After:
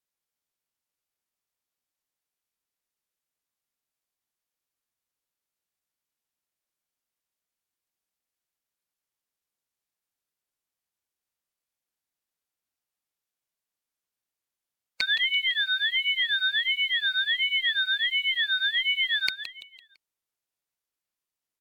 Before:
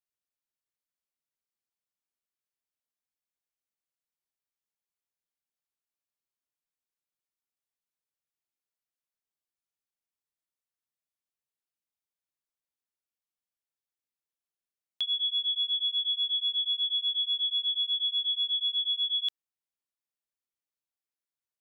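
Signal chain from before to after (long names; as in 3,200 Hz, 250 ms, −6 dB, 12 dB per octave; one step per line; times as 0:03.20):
phase-vocoder pitch shift with formants kept −4.5 semitones
repeating echo 168 ms, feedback 40%, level −10.5 dB
ring modulator whose carrier an LFO sweeps 730 Hz, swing 50%, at 1.4 Hz
level +7.5 dB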